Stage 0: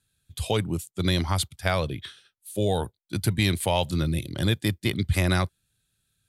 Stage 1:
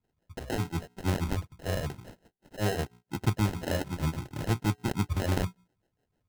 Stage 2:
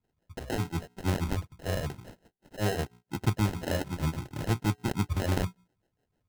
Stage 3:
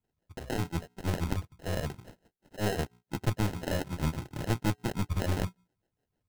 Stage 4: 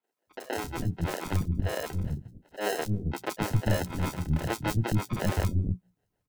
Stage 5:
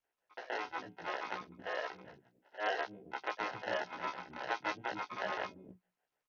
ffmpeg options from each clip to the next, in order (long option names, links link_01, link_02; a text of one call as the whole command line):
ffmpeg -i in.wav -filter_complex "[0:a]bandreject=frequency=60:width_type=h:width=6,bandreject=frequency=120:width_type=h:width=6,bandreject=frequency=180:width_type=h:width=6,bandreject=frequency=240:width_type=h:width=6,bandreject=frequency=300:width_type=h:width=6,bandreject=frequency=360:width_type=h:width=6,bandreject=frequency=420:width_type=h:width=6,acrossover=split=660[link_01][link_02];[link_01]aeval=exprs='val(0)*(1-1/2+1/2*cos(2*PI*6.4*n/s))':channel_layout=same[link_03];[link_02]aeval=exprs='val(0)*(1-1/2-1/2*cos(2*PI*6.4*n/s))':channel_layout=same[link_04];[link_03][link_04]amix=inputs=2:normalize=0,acrusher=samples=38:mix=1:aa=0.000001" out.wav
ffmpeg -i in.wav -af anull out.wav
ffmpeg -i in.wav -filter_complex "[0:a]asplit=2[link_01][link_02];[link_02]aeval=exprs='val(0)*gte(abs(val(0)),0.00841)':channel_layout=same,volume=-7.5dB[link_03];[link_01][link_03]amix=inputs=2:normalize=0,aeval=exprs='(tanh(8.91*val(0)+0.75)-tanh(0.75))/8.91':channel_layout=same" out.wav
ffmpeg -i in.wav -filter_complex "[0:a]acrossover=split=300|4000[link_01][link_02][link_03];[link_03]adelay=30[link_04];[link_01]adelay=270[link_05];[link_05][link_02][link_04]amix=inputs=3:normalize=0,volume=4dB" out.wav
ffmpeg -i in.wav -filter_complex "[0:a]highpass=710,lowpass=2900,asplit=2[link_01][link_02];[link_02]adelay=16,volume=-2.5dB[link_03];[link_01][link_03]amix=inputs=2:normalize=0,volume=-2.5dB" -ar 48000 -c:a sbc -b:a 64k out.sbc